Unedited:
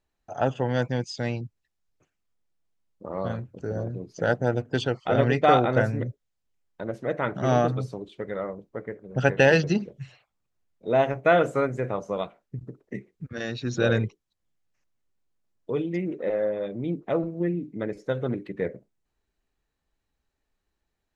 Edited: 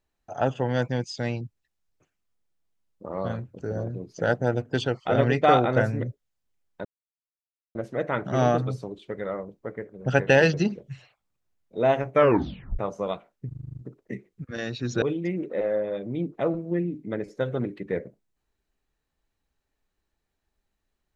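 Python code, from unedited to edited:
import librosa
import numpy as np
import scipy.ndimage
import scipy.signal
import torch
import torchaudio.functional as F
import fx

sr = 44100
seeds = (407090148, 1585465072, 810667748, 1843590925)

y = fx.edit(x, sr, fx.insert_silence(at_s=6.85, length_s=0.9),
    fx.tape_stop(start_s=11.23, length_s=0.66),
    fx.stutter(start_s=12.58, slice_s=0.04, count=8),
    fx.cut(start_s=13.84, length_s=1.87), tone=tone)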